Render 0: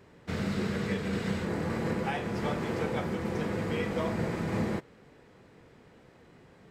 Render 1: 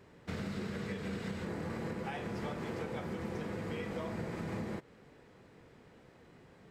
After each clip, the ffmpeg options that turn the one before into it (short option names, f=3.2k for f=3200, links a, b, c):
-af "acompressor=threshold=-33dB:ratio=6,volume=-2.5dB"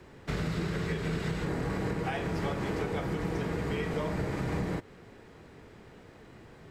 -af "afreqshift=-34,volume=7dB"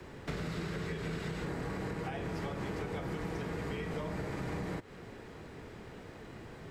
-filter_complex "[0:a]acrossover=split=210|630[a][b][c];[a]acompressor=threshold=-45dB:ratio=4[d];[b]acompressor=threshold=-46dB:ratio=4[e];[c]acompressor=threshold=-48dB:ratio=4[f];[d][e][f]amix=inputs=3:normalize=0,volume=3.5dB"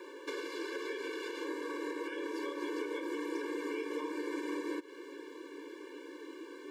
-af "asubboost=boost=7:cutoff=200,afftfilt=real='re*eq(mod(floor(b*sr/1024/300),2),1)':imag='im*eq(mod(floor(b*sr/1024/300),2),1)':win_size=1024:overlap=0.75,volume=4.5dB"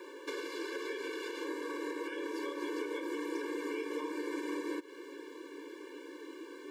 -af "highshelf=f=8.3k:g=3.5"